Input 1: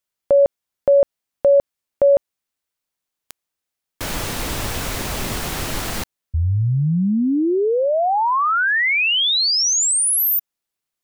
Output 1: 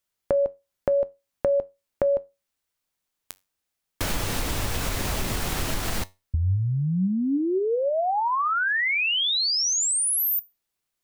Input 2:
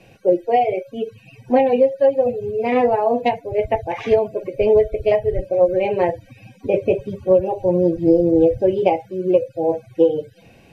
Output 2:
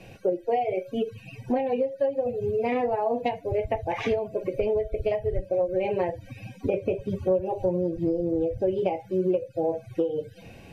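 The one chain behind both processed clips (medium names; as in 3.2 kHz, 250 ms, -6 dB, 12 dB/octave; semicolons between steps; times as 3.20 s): bass shelf 88 Hz +5.5 dB; compression 6:1, threshold -24 dBFS; feedback comb 93 Hz, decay 0.24 s, harmonics all, mix 40%; trim +4 dB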